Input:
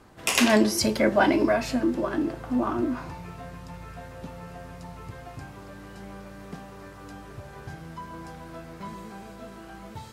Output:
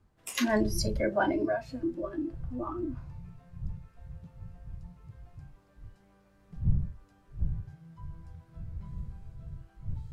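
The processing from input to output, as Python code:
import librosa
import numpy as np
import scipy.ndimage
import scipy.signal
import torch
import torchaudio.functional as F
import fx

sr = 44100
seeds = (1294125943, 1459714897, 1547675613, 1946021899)

y = fx.dmg_wind(x, sr, seeds[0], corner_hz=100.0, level_db=-31.0)
y = fx.noise_reduce_blind(y, sr, reduce_db=15)
y = y * librosa.db_to_amplitude(-6.5)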